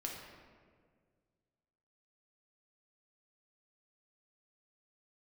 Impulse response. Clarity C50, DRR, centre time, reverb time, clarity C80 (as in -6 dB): 2.0 dB, -1.5 dB, 69 ms, 1.8 s, 4.0 dB